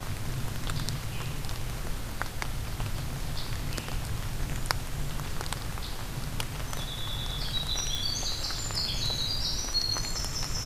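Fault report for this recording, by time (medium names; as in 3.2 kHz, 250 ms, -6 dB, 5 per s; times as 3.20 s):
7.95 s: pop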